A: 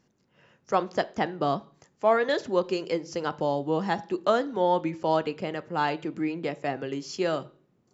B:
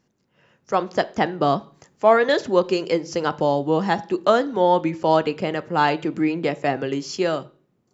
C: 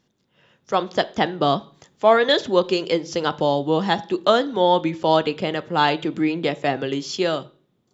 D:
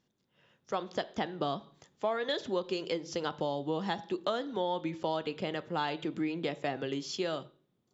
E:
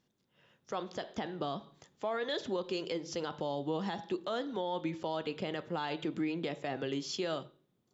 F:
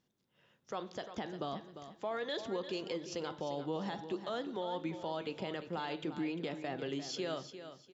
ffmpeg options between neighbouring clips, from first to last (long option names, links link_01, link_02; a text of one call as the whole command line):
ffmpeg -i in.wav -af "dynaudnorm=framelen=150:gausssize=11:maxgain=8dB" out.wav
ffmpeg -i in.wav -af "equalizer=frequency=3500:width=3.6:gain=11.5" out.wav
ffmpeg -i in.wav -af "acompressor=threshold=-20dB:ratio=4,volume=-9dB" out.wav
ffmpeg -i in.wav -af "alimiter=level_in=1.5dB:limit=-24dB:level=0:latency=1:release=26,volume=-1.5dB" out.wav
ffmpeg -i in.wav -af "aecho=1:1:349|698|1047:0.282|0.0817|0.0237,volume=-3dB" out.wav